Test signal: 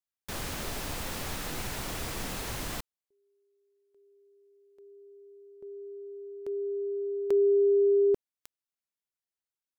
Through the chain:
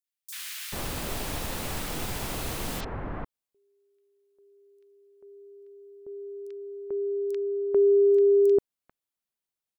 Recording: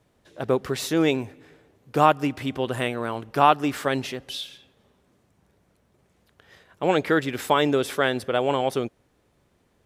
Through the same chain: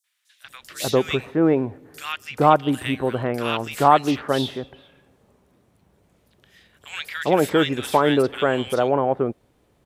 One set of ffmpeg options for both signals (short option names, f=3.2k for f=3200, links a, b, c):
-filter_complex "[0:a]aeval=exprs='0.708*(cos(1*acos(clip(val(0)/0.708,-1,1)))-cos(1*PI/2))+0.01*(cos(5*acos(clip(val(0)/0.708,-1,1)))-cos(5*PI/2))':c=same,acrossover=split=1700|5800[a][b][c];[b]adelay=40[d];[a]adelay=440[e];[e][d][c]amix=inputs=3:normalize=0,volume=3dB"